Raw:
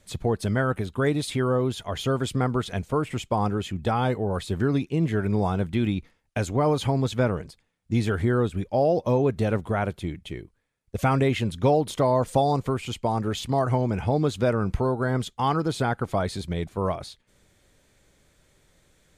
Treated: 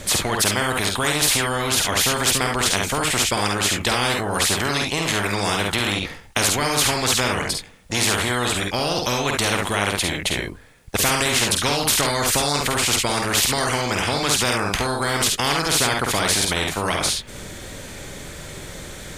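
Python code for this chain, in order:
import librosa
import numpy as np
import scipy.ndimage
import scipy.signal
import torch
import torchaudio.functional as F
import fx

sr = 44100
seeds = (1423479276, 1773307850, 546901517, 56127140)

p1 = x + fx.room_early_taps(x, sr, ms=(49, 69), db=(-5.5, -8.5), dry=0)
p2 = fx.spectral_comp(p1, sr, ratio=4.0)
y = p2 * librosa.db_to_amplitude(4.5)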